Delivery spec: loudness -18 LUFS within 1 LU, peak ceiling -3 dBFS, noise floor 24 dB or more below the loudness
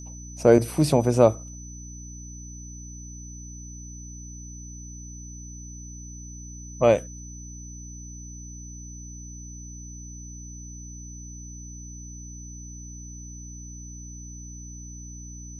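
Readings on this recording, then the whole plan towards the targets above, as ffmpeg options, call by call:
hum 60 Hz; highest harmonic 300 Hz; hum level -38 dBFS; steady tone 6 kHz; tone level -43 dBFS; loudness -21.0 LUFS; peak level -3.0 dBFS; loudness target -18.0 LUFS
-> -af "bandreject=f=60:t=h:w=4,bandreject=f=120:t=h:w=4,bandreject=f=180:t=h:w=4,bandreject=f=240:t=h:w=4,bandreject=f=300:t=h:w=4"
-af "bandreject=f=6000:w=30"
-af "volume=1.41,alimiter=limit=0.708:level=0:latency=1"

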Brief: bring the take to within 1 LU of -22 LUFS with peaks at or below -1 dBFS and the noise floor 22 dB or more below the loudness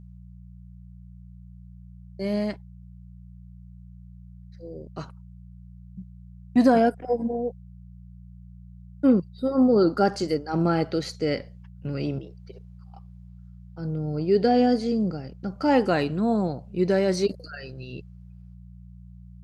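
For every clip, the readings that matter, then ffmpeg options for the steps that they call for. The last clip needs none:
hum 60 Hz; highest harmonic 180 Hz; hum level -42 dBFS; loudness -24.0 LUFS; peak level -8.5 dBFS; loudness target -22.0 LUFS
-> -af "bandreject=f=60:t=h:w=4,bandreject=f=120:t=h:w=4,bandreject=f=180:t=h:w=4"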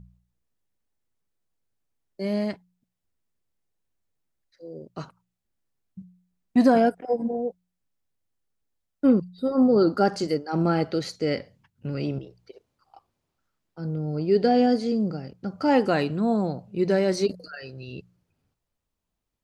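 hum not found; loudness -24.0 LUFS; peak level -8.0 dBFS; loudness target -22.0 LUFS
-> -af "volume=1.26"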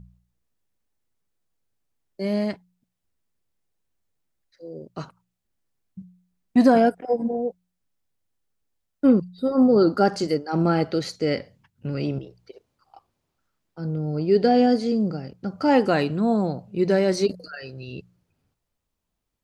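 loudness -22.0 LUFS; peak level -6.0 dBFS; noise floor -79 dBFS

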